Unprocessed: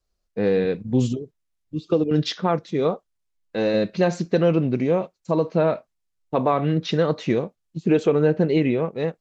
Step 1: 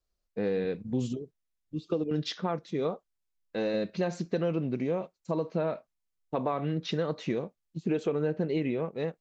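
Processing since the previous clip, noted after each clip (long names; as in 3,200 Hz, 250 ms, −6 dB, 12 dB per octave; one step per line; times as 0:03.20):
parametric band 110 Hz −5.5 dB 0.25 octaves
downward compressor 2 to 1, threshold −22 dBFS, peak gain reduction 5.5 dB
level −6 dB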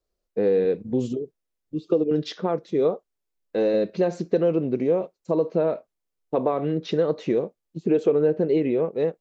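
parametric band 430 Hz +10.5 dB 1.5 octaves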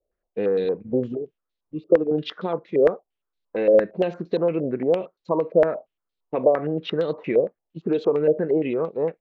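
low-pass on a step sequencer 8.7 Hz 580–3,900 Hz
level −2.5 dB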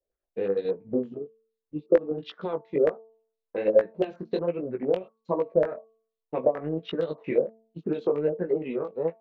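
chorus effect 1.3 Hz, delay 16.5 ms, depth 5.3 ms
transient designer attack +4 dB, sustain −5 dB
hum removal 223.3 Hz, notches 5
level −3.5 dB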